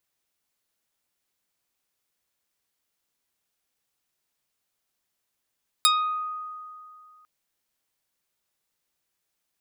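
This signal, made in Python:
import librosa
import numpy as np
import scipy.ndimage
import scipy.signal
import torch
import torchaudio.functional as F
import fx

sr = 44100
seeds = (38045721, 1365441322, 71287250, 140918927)

y = fx.pluck(sr, length_s=1.4, note=87, decay_s=2.43, pick=0.45, brightness='medium')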